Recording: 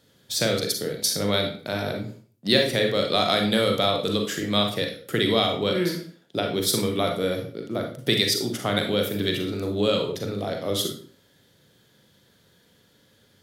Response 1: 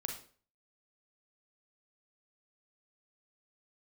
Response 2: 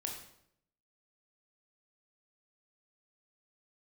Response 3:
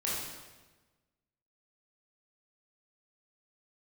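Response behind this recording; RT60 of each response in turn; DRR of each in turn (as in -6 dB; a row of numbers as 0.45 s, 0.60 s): 1; 0.45 s, 0.70 s, 1.2 s; 2.5 dB, 0.5 dB, -7.0 dB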